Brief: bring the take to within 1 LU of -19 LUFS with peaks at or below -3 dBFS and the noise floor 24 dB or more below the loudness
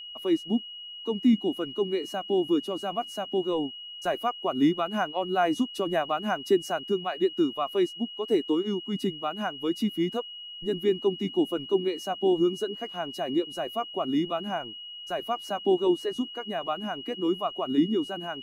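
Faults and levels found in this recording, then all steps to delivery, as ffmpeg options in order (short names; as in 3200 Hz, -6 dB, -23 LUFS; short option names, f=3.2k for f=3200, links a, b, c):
steady tone 2900 Hz; tone level -39 dBFS; loudness -28.0 LUFS; peak -12.5 dBFS; loudness target -19.0 LUFS
-> -af "bandreject=f=2.9k:w=30"
-af "volume=9dB"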